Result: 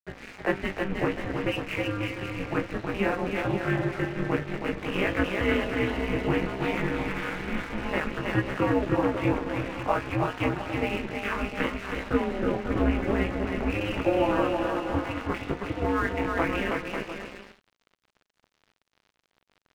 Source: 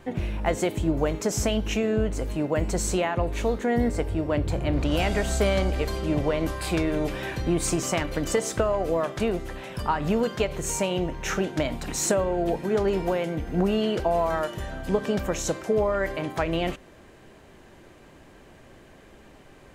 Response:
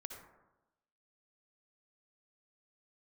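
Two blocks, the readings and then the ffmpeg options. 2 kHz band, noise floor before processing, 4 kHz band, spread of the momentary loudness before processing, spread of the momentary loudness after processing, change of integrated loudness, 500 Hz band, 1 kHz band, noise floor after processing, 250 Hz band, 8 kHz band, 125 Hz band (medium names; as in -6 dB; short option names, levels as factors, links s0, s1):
+3.5 dB, -51 dBFS, -3.5 dB, 5 LU, 6 LU, -2.0 dB, -3.5 dB, -0.5 dB, -76 dBFS, -1.0 dB, under -15 dB, -2.5 dB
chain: -filter_complex "[0:a]highpass=f=190:w=0.5412,highpass=f=190:w=1.3066,tiltshelf=f=780:g=-5,acrossover=split=340|1400[s0][s1][s2];[s2]alimiter=limit=0.112:level=0:latency=1:release=289[s3];[s0][s1][s3]amix=inputs=3:normalize=0,flanger=delay=19.5:depth=3.6:speed=0.4,highpass=f=330:t=q:w=0.5412,highpass=f=330:t=q:w=1.307,lowpass=f=3000:t=q:w=0.5176,lowpass=f=3000:t=q:w=0.7071,lowpass=f=3000:t=q:w=1.932,afreqshift=-230,aeval=exprs='val(0)*sin(2*PI*100*n/s)':c=same,asplit=2[s4][s5];[s5]adelay=15,volume=0.447[s6];[s4][s6]amix=inputs=2:normalize=0,aecho=1:1:320|544|700.8|810.6|887.4:0.631|0.398|0.251|0.158|0.1,aeval=exprs='sgn(val(0))*max(abs(val(0))-0.00398,0)':c=same,volume=1.88"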